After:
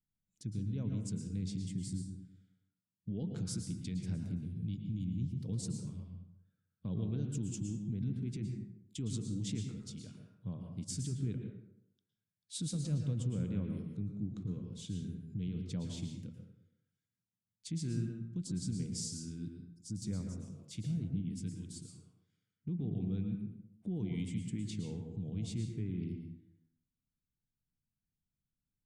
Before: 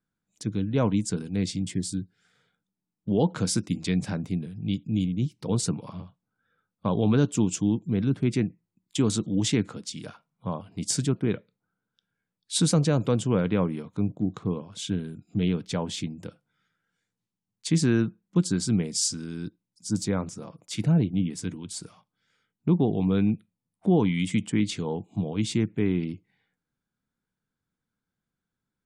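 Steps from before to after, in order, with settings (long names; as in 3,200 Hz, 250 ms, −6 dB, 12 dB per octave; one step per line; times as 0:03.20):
guitar amp tone stack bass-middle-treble 10-0-1
brickwall limiter −37 dBFS, peak gain reduction 9 dB
dense smooth reverb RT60 0.77 s, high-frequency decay 0.55×, pre-delay 100 ms, DRR 3.5 dB
level +6.5 dB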